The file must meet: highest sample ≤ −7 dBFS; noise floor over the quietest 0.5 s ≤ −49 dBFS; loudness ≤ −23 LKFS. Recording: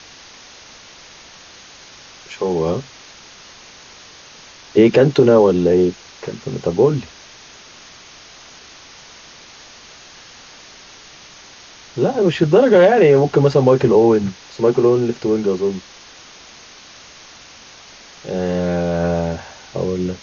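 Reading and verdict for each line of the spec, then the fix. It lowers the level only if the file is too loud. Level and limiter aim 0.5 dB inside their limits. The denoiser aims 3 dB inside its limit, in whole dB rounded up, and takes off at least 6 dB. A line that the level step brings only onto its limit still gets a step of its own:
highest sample −2.0 dBFS: out of spec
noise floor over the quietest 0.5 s −42 dBFS: out of spec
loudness −16.0 LKFS: out of spec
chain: level −7.5 dB

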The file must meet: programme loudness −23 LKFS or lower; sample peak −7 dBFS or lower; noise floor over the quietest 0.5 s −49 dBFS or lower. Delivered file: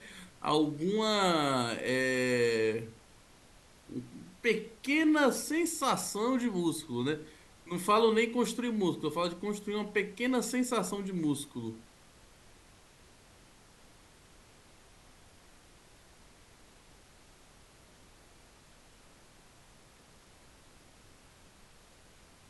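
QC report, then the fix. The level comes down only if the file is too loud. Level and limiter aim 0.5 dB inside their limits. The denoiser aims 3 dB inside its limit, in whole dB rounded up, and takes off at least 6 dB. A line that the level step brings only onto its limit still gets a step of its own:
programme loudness −31.0 LKFS: in spec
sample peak −14.0 dBFS: in spec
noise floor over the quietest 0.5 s −59 dBFS: in spec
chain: no processing needed

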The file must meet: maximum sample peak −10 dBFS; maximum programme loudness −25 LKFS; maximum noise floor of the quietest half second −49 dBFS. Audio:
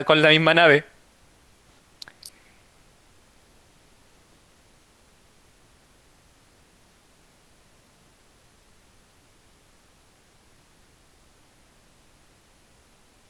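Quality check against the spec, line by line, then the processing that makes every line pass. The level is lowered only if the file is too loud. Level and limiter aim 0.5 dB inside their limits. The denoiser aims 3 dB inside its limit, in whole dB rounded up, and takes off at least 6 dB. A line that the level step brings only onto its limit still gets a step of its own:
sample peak −2.5 dBFS: out of spec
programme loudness −16.0 LKFS: out of spec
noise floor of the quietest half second −58 dBFS: in spec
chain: level −9.5 dB

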